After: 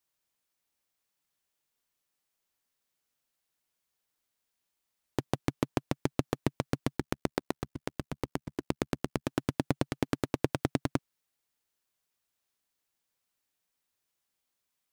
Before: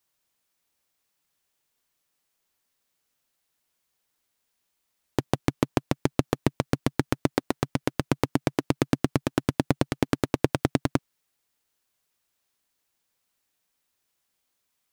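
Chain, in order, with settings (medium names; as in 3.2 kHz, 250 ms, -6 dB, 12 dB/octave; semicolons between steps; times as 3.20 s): 6.97–9.24 s: AM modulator 71 Hz, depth 95%; trim -6 dB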